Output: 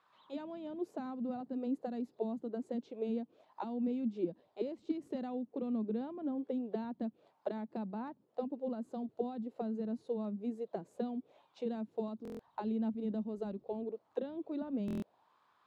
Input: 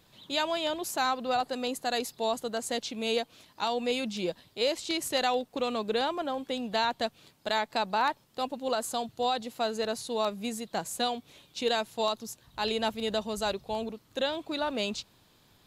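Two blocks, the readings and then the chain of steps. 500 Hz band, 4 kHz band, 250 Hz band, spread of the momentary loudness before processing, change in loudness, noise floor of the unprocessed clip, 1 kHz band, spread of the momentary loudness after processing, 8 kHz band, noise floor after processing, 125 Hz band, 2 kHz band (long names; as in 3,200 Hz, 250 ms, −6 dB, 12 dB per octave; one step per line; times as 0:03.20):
−9.0 dB, below −30 dB, 0.0 dB, 7 LU, −8.5 dB, −63 dBFS, −16.5 dB, 7 LU, below −30 dB, −73 dBFS, −1.0 dB, −24.5 dB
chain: envelope filter 220–1,200 Hz, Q 3.7, down, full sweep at −27 dBFS
buffer that repeats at 0:12.23/0:14.86, samples 1,024, times 6
level +3.5 dB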